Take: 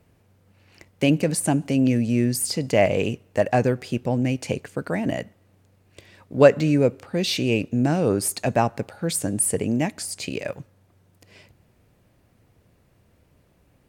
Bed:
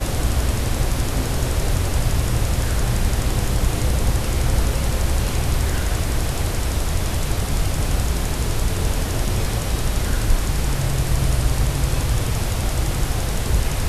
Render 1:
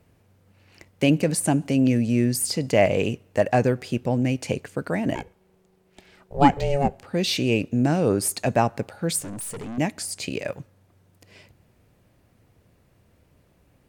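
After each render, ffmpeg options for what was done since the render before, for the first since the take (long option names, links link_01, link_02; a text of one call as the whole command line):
ffmpeg -i in.wav -filter_complex "[0:a]asplit=3[link_01][link_02][link_03];[link_01]afade=type=out:start_time=5.14:duration=0.02[link_04];[link_02]aeval=exprs='val(0)*sin(2*PI*280*n/s)':channel_layout=same,afade=type=in:start_time=5.14:duration=0.02,afade=type=out:start_time=7.02:duration=0.02[link_05];[link_03]afade=type=in:start_time=7.02:duration=0.02[link_06];[link_04][link_05][link_06]amix=inputs=3:normalize=0,asettb=1/sr,asplit=3[link_07][link_08][link_09];[link_07]atrim=end=9.204[link_10];[link_08]atrim=start=9.2:end=9.78,asetpts=PTS-STARTPTS,afade=type=in:duration=0.004:curve=qsin,afade=type=out:start_time=0.576:duration=0.004:curve=qsin,aeval=exprs='(tanh(39.8*val(0)+0.25)-tanh(0.25))/39.8':channel_layout=same[link_11];[link_09]atrim=start=9.776[link_12];[link_10][link_11]acrossfade=duration=0.004:curve1=hsin:curve2=qsin[link_13];[link_13][link_12]acrossfade=duration=0.004:curve1=qsin:curve2=hsin" out.wav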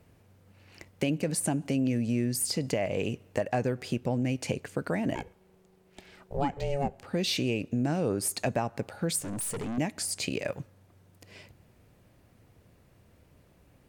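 ffmpeg -i in.wav -af "alimiter=limit=-11dB:level=0:latency=1:release=431,acompressor=threshold=-28dB:ratio=2.5" out.wav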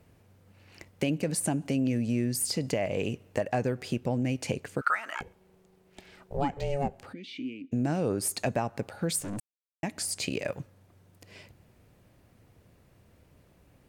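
ffmpeg -i in.wav -filter_complex "[0:a]asettb=1/sr,asplit=3[link_01][link_02][link_03];[link_01]atrim=end=4.814[link_04];[link_02]atrim=start=4.81:end=5.21,asetpts=PTS-STARTPTS,afade=type=in:duration=0.004:curve=qsin,afade=type=out:start_time=0.396:duration=0.004:curve=qsin,highpass=frequency=1300:width_type=q:width=12[link_05];[link_03]atrim=start=5.206[link_06];[link_04][link_05]acrossfade=duration=0.004:curve1=hsin:curve2=qsin[link_07];[link_07][link_06]acrossfade=duration=0.004:curve1=qsin:curve2=hsin,asplit=3[link_08][link_09][link_10];[link_08]afade=type=out:start_time=7.12:duration=0.02[link_11];[link_09]asplit=3[link_12][link_13][link_14];[link_12]bandpass=frequency=270:width_type=q:width=8,volume=0dB[link_15];[link_13]bandpass=frequency=2290:width_type=q:width=8,volume=-6dB[link_16];[link_14]bandpass=frequency=3010:width_type=q:width=8,volume=-9dB[link_17];[link_15][link_16][link_17]amix=inputs=3:normalize=0,afade=type=in:start_time=7.12:duration=0.02,afade=type=out:start_time=7.71:duration=0.02[link_18];[link_10]afade=type=in:start_time=7.71:duration=0.02[link_19];[link_11][link_18][link_19]amix=inputs=3:normalize=0,asplit=3[link_20][link_21][link_22];[link_20]atrim=end=9.4,asetpts=PTS-STARTPTS,afade=type=out:start_time=9.396:duration=0.004:curve=hsin[link_23];[link_21]atrim=start=9.4:end=9.83,asetpts=PTS-STARTPTS,volume=0[link_24];[link_22]atrim=start=9.83,asetpts=PTS-STARTPTS,afade=type=in:duration=0.004:curve=hsin[link_25];[link_23][link_24][link_25]concat=n=3:v=0:a=1" out.wav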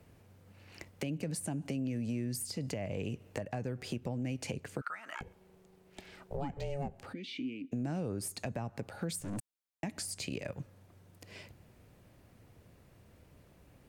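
ffmpeg -i in.wav -filter_complex "[0:a]acrossover=split=210[link_01][link_02];[link_01]alimiter=level_in=10.5dB:limit=-24dB:level=0:latency=1,volume=-10.5dB[link_03];[link_02]acompressor=threshold=-38dB:ratio=6[link_04];[link_03][link_04]amix=inputs=2:normalize=0" out.wav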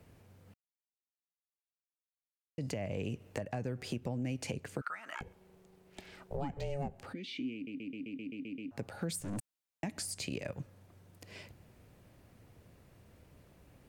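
ffmpeg -i in.wav -filter_complex "[0:a]asplit=12[link_01][link_02][link_03][link_04][link_05][link_06][link_07][link_08][link_09][link_10][link_11][link_12];[link_01]atrim=end=0.54,asetpts=PTS-STARTPTS,afade=type=out:start_time=0.536:duration=0.004:curve=hsin[link_13];[link_02]atrim=start=0.54:end=2.58,asetpts=PTS-STARTPTS,volume=0[link_14];[link_03]atrim=start=2.58:end=7.672,asetpts=PTS-STARTPTS,afade=type=in:duration=0.004:curve=hsin[link_15];[link_04]atrim=start=7.538:end=7.672[link_16];[link_05]atrim=start=7.538:end=7.672[link_17];[link_06]atrim=start=7.538:end=7.672[link_18];[link_07]atrim=start=7.538:end=7.672[link_19];[link_08]atrim=start=7.538:end=7.672[link_20];[link_09]atrim=start=7.538:end=7.672[link_21];[link_10]atrim=start=7.538:end=7.672[link_22];[link_11]atrim=start=7.538:end=7.672[link_23];[link_12]atrim=start=8.708[link_24];[link_13][link_14][link_15]concat=n=3:v=0:a=1[link_25];[link_25][link_16]acrossfade=duration=0.004:curve1=hsin:curve2=hsin[link_26];[link_26][link_17]acrossfade=duration=0.004:curve1=hsin:curve2=hsin[link_27];[link_27][link_18]acrossfade=duration=0.004:curve1=hsin:curve2=hsin[link_28];[link_28][link_19]acrossfade=duration=0.004:curve1=hsin:curve2=hsin[link_29];[link_29][link_20]acrossfade=duration=0.004:curve1=hsin:curve2=hsin[link_30];[link_30][link_21]acrossfade=duration=0.004:curve1=hsin:curve2=hsin[link_31];[link_31][link_22]acrossfade=duration=0.004:curve1=hsin:curve2=hsin[link_32];[link_32][link_23]acrossfade=duration=0.004:curve1=hsin:curve2=hsin[link_33];[link_33][link_24]acrossfade=duration=0.004:curve1=hsin:curve2=hsin" out.wav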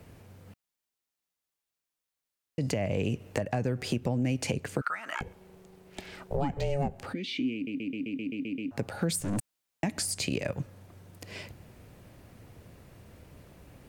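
ffmpeg -i in.wav -af "volume=8dB" out.wav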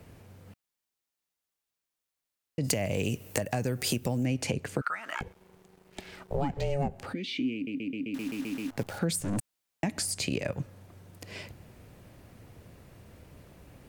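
ffmpeg -i in.wav -filter_complex "[0:a]asplit=3[link_01][link_02][link_03];[link_01]afade=type=out:start_time=2.63:duration=0.02[link_04];[link_02]aemphasis=mode=production:type=75fm,afade=type=in:start_time=2.63:duration=0.02,afade=type=out:start_time=4.24:duration=0.02[link_05];[link_03]afade=type=in:start_time=4.24:duration=0.02[link_06];[link_04][link_05][link_06]amix=inputs=3:normalize=0,asettb=1/sr,asplit=3[link_07][link_08][link_09];[link_07]atrim=end=5.034[link_10];[link_08]atrim=start=5.03:end=6.76,asetpts=PTS-STARTPTS,afade=type=in:duration=0.004:curve=qsin,afade=type=out:start_time=1.726:duration=0.004:curve=qsin,aeval=exprs='sgn(val(0))*max(abs(val(0))-0.00119,0)':channel_layout=same[link_11];[link_09]atrim=start=6.756[link_12];[link_10][link_11]acrossfade=duration=0.004:curve1=hsin:curve2=qsin[link_13];[link_13][link_12]acrossfade=duration=0.004:curve1=qsin:curve2=hsin,asettb=1/sr,asplit=3[link_14][link_15][link_16];[link_14]atrim=end=8.144[link_17];[link_15]atrim=start=8.14:end=8.99,asetpts=PTS-STARTPTS,afade=type=in:duration=0.004:curve=qsin,afade=type=out:start_time=0.846:duration=0.004:curve=qsin,acrusher=bits=8:dc=4:mix=0:aa=0.000001[link_18];[link_16]atrim=start=8.986[link_19];[link_17][link_18]acrossfade=duration=0.004:curve1=hsin:curve2=qsin[link_20];[link_20][link_19]acrossfade=duration=0.004:curve1=qsin:curve2=hsin" out.wav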